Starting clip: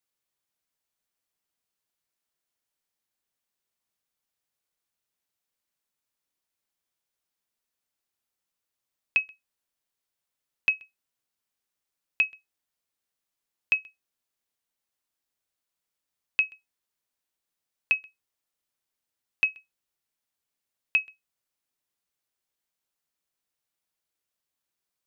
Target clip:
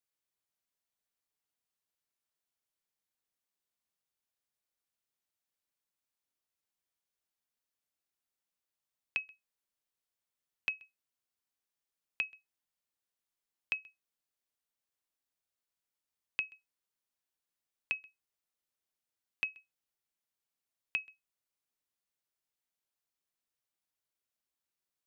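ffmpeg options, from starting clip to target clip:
ffmpeg -i in.wav -filter_complex "[0:a]acrossover=split=420[link_01][link_02];[link_02]acompressor=threshold=-25dB:ratio=6[link_03];[link_01][link_03]amix=inputs=2:normalize=0,volume=-6dB" out.wav

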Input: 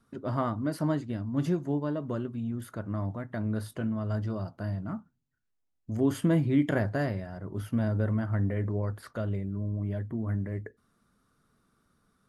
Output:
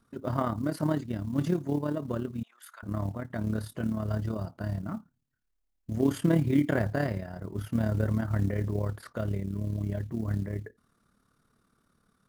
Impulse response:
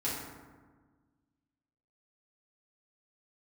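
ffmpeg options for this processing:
-filter_complex "[0:a]asettb=1/sr,asplit=3[link_01][link_02][link_03];[link_01]atrim=end=2.434[link_04];[link_02]atrim=start=2.43:end=2.83,asetpts=PTS-STARTPTS,afade=type=in:duration=0.004:curve=qsin,afade=type=out:start_time=0.396:duration=0.004:curve=qsin,highpass=frequency=1000:width=0.5412,highpass=frequency=1000:width=1.3066[link_05];[link_03]atrim=start=2.826[link_06];[link_04][link_05]acrossfade=duration=0.004:curve1=hsin:curve2=qsin[link_07];[link_07][link_06]acrossfade=duration=0.004:curve1=qsin:curve2=hsin,acrusher=bits=8:mode=log:mix=0:aa=0.000001,tremolo=f=36:d=0.621,volume=3dB"

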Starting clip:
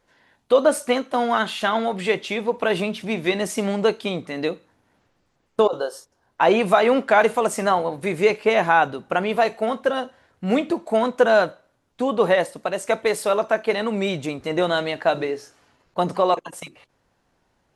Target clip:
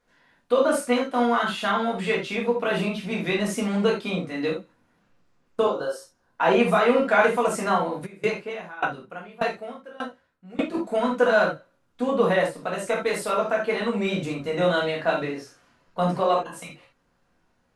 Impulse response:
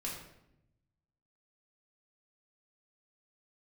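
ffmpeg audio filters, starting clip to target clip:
-filter_complex "[0:a]equalizer=frequency=1400:width=4.5:gain=5[link_01];[1:a]atrim=start_sample=2205,atrim=end_sample=3969[link_02];[link_01][link_02]afir=irnorm=-1:irlink=0,asplit=3[link_03][link_04][link_05];[link_03]afade=type=out:start_time=8.05:duration=0.02[link_06];[link_04]aeval=exprs='val(0)*pow(10,-23*if(lt(mod(1.7*n/s,1),2*abs(1.7)/1000),1-mod(1.7*n/s,1)/(2*abs(1.7)/1000),(mod(1.7*n/s,1)-2*abs(1.7)/1000)/(1-2*abs(1.7)/1000))/20)':channel_layout=same,afade=type=in:start_time=8.05:duration=0.02,afade=type=out:start_time=10.73:duration=0.02[link_07];[link_05]afade=type=in:start_time=10.73:duration=0.02[link_08];[link_06][link_07][link_08]amix=inputs=3:normalize=0,volume=-2.5dB"

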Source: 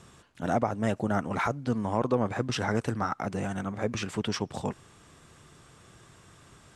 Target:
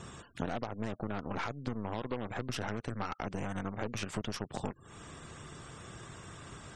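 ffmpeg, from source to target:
ffmpeg -i in.wav -af "aeval=exprs='0.266*(cos(1*acos(clip(val(0)/0.266,-1,1)))-cos(1*PI/2))+0.0335*(cos(6*acos(clip(val(0)/0.266,-1,1)))-cos(6*PI/2))+0.0531*(cos(8*acos(clip(val(0)/0.266,-1,1)))-cos(8*PI/2))':channel_layout=same,acompressor=threshold=-38dB:ratio=16,afftfilt=real='re*gte(hypot(re,im),0.000891)':imag='im*gte(hypot(re,im),0.000891)':win_size=1024:overlap=0.75,volume=6.5dB" out.wav

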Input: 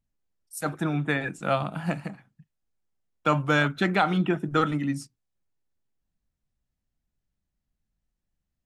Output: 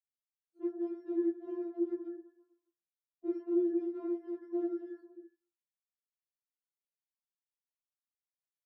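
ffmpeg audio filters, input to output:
ffmpeg -i in.wav -filter_complex "[0:a]afftfilt=real='real(if(between(b,1,1012),(2*floor((b-1)/92)+1)*92-b,b),0)':imag='imag(if(between(b,1,1012),(2*floor((b-1)/92)+1)*92-b,b),0)*if(between(b,1,1012),-1,1)':win_size=2048:overlap=0.75,agate=range=-11dB:threshold=-47dB:ratio=16:detection=peak,afftdn=noise_reduction=34:noise_floor=-48,asplit=6[link_01][link_02][link_03][link_04][link_05][link_06];[link_02]adelay=122,afreqshift=-43,volume=-24dB[link_07];[link_03]adelay=244,afreqshift=-86,volume=-27.9dB[link_08];[link_04]adelay=366,afreqshift=-129,volume=-31.8dB[link_09];[link_05]adelay=488,afreqshift=-172,volume=-35.6dB[link_10];[link_06]adelay=610,afreqshift=-215,volume=-39.5dB[link_11];[link_01][link_07][link_08][link_09][link_10][link_11]amix=inputs=6:normalize=0,alimiter=limit=-16dB:level=0:latency=1:release=21,aeval=exprs='0.158*sin(PI/2*5.01*val(0)/0.158)':channel_layout=same,asuperpass=centerf=370:order=4:qfactor=2.9,afftfilt=real='re*4*eq(mod(b,16),0)':imag='im*4*eq(mod(b,16),0)':win_size=2048:overlap=0.75,volume=1dB" out.wav

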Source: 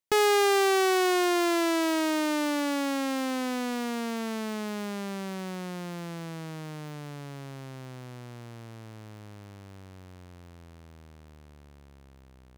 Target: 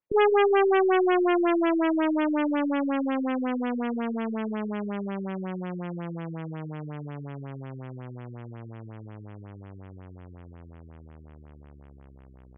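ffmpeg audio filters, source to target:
ffmpeg -i in.wav -af "adynamicsmooth=sensitivity=6:basefreq=5800,afftfilt=real='re*lt(b*sr/1024,390*pow(3500/390,0.5+0.5*sin(2*PI*5.5*pts/sr)))':imag='im*lt(b*sr/1024,390*pow(3500/390,0.5+0.5*sin(2*PI*5.5*pts/sr)))':win_size=1024:overlap=0.75,volume=3.5dB" out.wav

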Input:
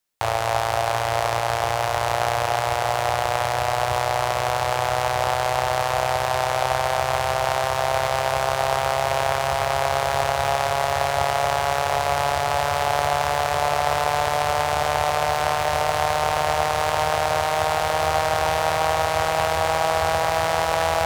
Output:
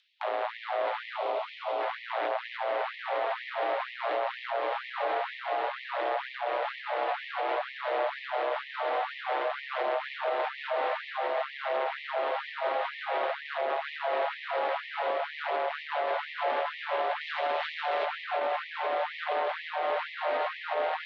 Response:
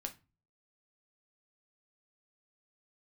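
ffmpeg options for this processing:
-filter_complex "[0:a]asoftclip=type=tanh:threshold=-19dB,asplit=2[link_01][link_02];[link_02]aecho=0:1:220|407|566|701.1|815.9:0.631|0.398|0.251|0.158|0.1[link_03];[link_01][link_03]amix=inputs=2:normalize=0,highpass=frequency=150:width_type=q:width=0.5412,highpass=frequency=150:width_type=q:width=1.307,lowpass=frequency=3600:width_type=q:width=0.5176,lowpass=frequency=3600:width_type=q:width=0.7071,lowpass=frequency=3600:width_type=q:width=1.932,afreqshift=-51,acrossover=split=730|2500[link_04][link_05][link_06];[link_06]acompressor=mode=upward:threshold=-54dB:ratio=2.5[link_07];[link_04][link_05][link_07]amix=inputs=3:normalize=0,asettb=1/sr,asplit=3[link_08][link_09][link_10];[link_08]atrim=end=17.214[link_11];[link_09]atrim=start=17.21:end=18.06,asetpts=PTS-STARTPTS,afade=type=in:duration=0.004:curve=qsin,afade=type=out:start_time=0.846:duration=0.004:curve=qsin,highshelf=frequency=2600:gain=8[link_12];[link_10]atrim=start=18.056[link_13];[link_11][link_12]acrossfade=duration=0.004:curve1=hsin:curve2=qsin[link_14];[link_14][link_13]acrossfade=duration=0.004:curve1=qsin:curve2=hsin,alimiter=limit=-20.5dB:level=0:latency=1:release=146,asettb=1/sr,asplit=3[link_15][link_16][link_17];[link_15]atrim=end=1.164[link_18];[link_16]atrim=start=1.16:end=1.81,asetpts=PTS-STARTPTS,afade=type=in:duration=0.004:curve=qsin,afade=type=out:start_time=0.646:duration=0.004:curve=qsin,equalizer=frequency=1700:width_type=o:width=0.44:gain=-13[link_19];[link_17]atrim=start=1.806[link_20];[link_18][link_19]acrossfade=duration=0.004:curve1=hsin:curve2=qsin[link_21];[link_21][link_20]acrossfade=duration=0.004:curve1=qsin:curve2=hsin,afftfilt=real='re*gte(b*sr/1024,240*pow(1800/240,0.5+0.5*sin(2*PI*2.1*pts/sr)))':imag='im*gte(b*sr/1024,240*pow(1800/240,0.5+0.5*sin(2*PI*2.1*pts/sr)))':win_size=1024:overlap=0.75"

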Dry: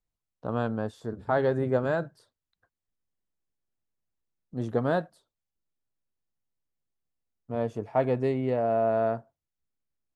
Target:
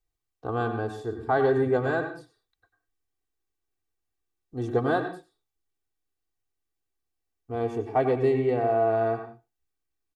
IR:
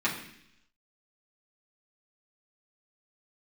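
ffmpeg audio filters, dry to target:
-filter_complex "[0:a]aecho=1:1:2.6:0.83,asplit=2[link_01][link_02];[link_02]adelay=100,highpass=300,lowpass=3400,asoftclip=type=hard:threshold=-19.5dB,volume=-24dB[link_03];[link_01][link_03]amix=inputs=2:normalize=0,asplit=2[link_04][link_05];[1:a]atrim=start_sample=2205,afade=type=out:start_time=0.17:duration=0.01,atrim=end_sample=7938,adelay=92[link_06];[link_05][link_06]afir=irnorm=-1:irlink=0,volume=-16.5dB[link_07];[link_04][link_07]amix=inputs=2:normalize=0"

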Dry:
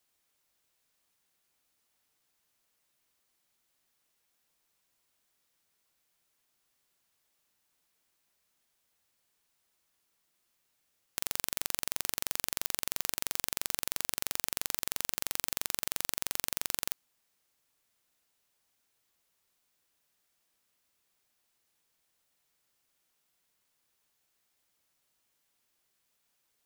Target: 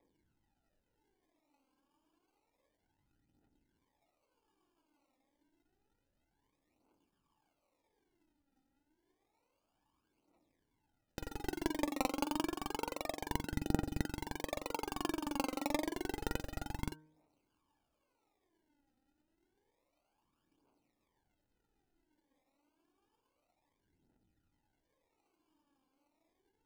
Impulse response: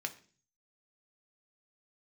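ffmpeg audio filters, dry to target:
-filter_complex "[0:a]asplit=3[link_01][link_02][link_03];[link_01]bandpass=frequency=300:width_type=q:width=8,volume=0dB[link_04];[link_02]bandpass=frequency=870:width_type=q:width=8,volume=-6dB[link_05];[link_03]bandpass=frequency=2240:width_type=q:width=8,volume=-9dB[link_06];[link_04][link_05][link_06]amix=inputs=3:normalize=0,acrusher=samples=31:mix=1:aa=0.000001:lfo=1:lforange=18.6:lforate=0.38,bandreject=frequency=154.5:width_type=h:width=4,bandreject=frequency=309:width_type=h:width=4,bandreject=frequency=463.5:width_type=h:width=4,bandreject=frequency=618:width_type=h:width=4,bandreject=frequency=772.5:width_type=h:width=4,bandreject=frequency=927:width_type=h:width=4,bandreject=frequency=1081.5:width_type=h:width=4,bandreject=frequency=1236:width_type=h:width=4,bandreject=frequency=1390.5:width_type=h:width=4,bandreject=frequency=1545:width_type=h:width=4,aphaser=in_gain=1:out_gain=1:delay=3.9:decay=0.59:speed=0.29:type=triangular,volume=16.5dB"

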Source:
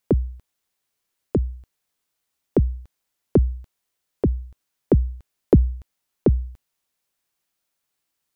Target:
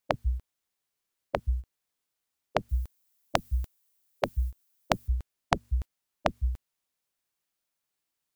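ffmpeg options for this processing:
ffmpeg -i in.wav -filter_complex "[0:a]agate=range=-14dB:threshold=-36dB:ratio=16:detection=peak,asettb=1/sr,asplit=3[link_01][link_02][link_03];[link_01]atrim=end=2.694[link_04];[link_02]atrim=start=2.69:end=5.08,asetpts=PTS-STARTPTS,afade=type=in:duration=0.004:curve=qsin,afade=type=out:start_time=2.386:duration=0.004:curve=qsin,aemphasis=mode=production:type=50kf[link_05];[link_03]atrim=start=5.076[link_06];[link_04][link_05]acrossfade=duration=0.004:curve1=hsin:curve2=qsin[link_07];[link_07][link_06]acrossfade=duration=0.004:curve1=qsin:curve2=hsin,afftfilt=real='re*lt(hypot(re,im),0.398)':imag='im*lt(hypot(re,im),0.398)':win_size=1024:overlap=0.75,volume=8dB" out.wav

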